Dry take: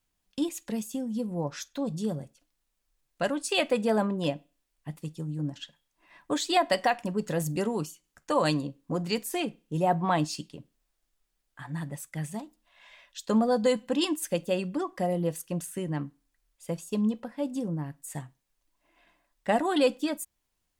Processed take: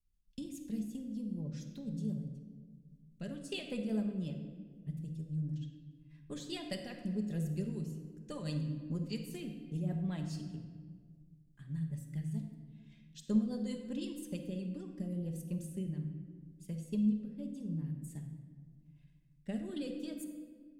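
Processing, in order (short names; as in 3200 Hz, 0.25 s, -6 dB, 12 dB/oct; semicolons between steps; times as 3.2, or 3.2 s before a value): passive tone stack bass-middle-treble 10-0-1; rotary speaker horn 5 Hz, later 0.85 Hz, at 14.09; transient shaper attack +4 dB, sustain -1 dB; shoebox room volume 1900 m³, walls mixed, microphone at 1.3 m; gain +7 dB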